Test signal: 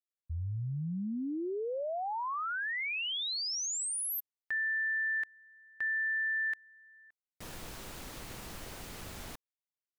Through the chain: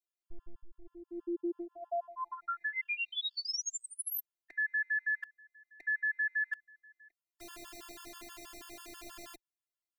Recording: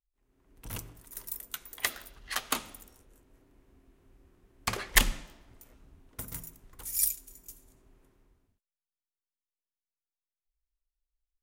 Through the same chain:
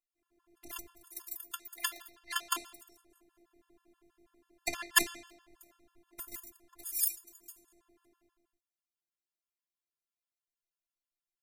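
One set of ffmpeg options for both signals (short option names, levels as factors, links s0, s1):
-af "highpass=f=68:w=0.5412,highpass=f=68:w=1.3066,afftfilt=real='hypot(re,im)*cos(PI*b)':imag='0':win_size=512:overlap=0.75,afftfilt=real='re*gt(sin(2*PI*6.2*pts/sr)*(1-2*mod(floor(b*sr/1024/900),2)),0)':imag='im*gt(sin(2*PI*6.2*pts/sr)*(1-2*mod(floor(b*sr/1024/900),2)),0)':win_size=1024:overlap=0.75,volume=1.5"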